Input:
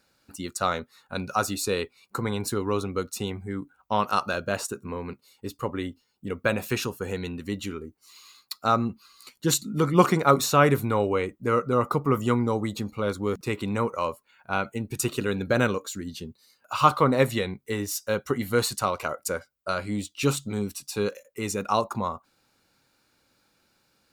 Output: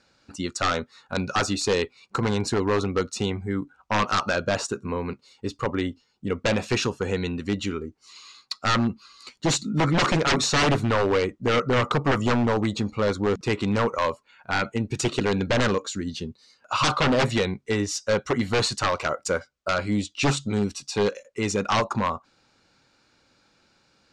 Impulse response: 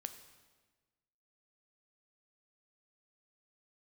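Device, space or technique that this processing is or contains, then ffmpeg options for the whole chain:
synthesiser wavefolder: -af "aeval=exprs='0.1*(abs(mod(val(0)/0.1+3,4)-2)-1)':c=same,lowpass=f=7k:w=0.5412,lowpass=f=7k:w=1.3066,volume=5dB"

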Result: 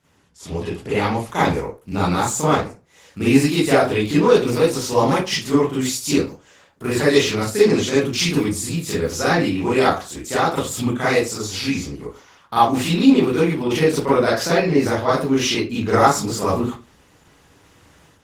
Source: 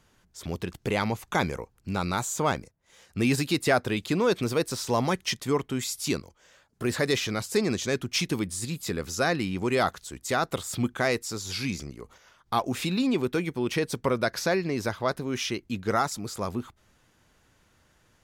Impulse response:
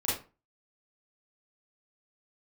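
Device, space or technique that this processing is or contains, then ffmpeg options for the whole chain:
far-field microphone of a smart speaker: -filter_complex "[0:a]asettb=1/sr,asplit=3[a][b][c];[a]atrim=end=11.434[d];[b]atrim=start=11.43:end=11.85,asetpts=PTS-STARTPTS,afade=t=in:d=0.004:c=qsin,afade=t=out:st=0.416:d=0.004:c=qsin,equalizer=f=170:w=0.56:g=-3[e];[c]atrim=start=11.846[f];[d][e]acrossfade=d=0.004:c1=hsin:c2=qsin[g];[g][f]acrossfade=d=0.004:c1=qsin:c2=hsin[h];[1:a]atrim=start_sample=2205[i];[h][i]afir=irnorm=-1:irlink=0,highpass=100,dynaudnorm=f=950:g=3:m=14dB,volume=-1dB" -ar 48000 -c:a libopus -b:a 16k

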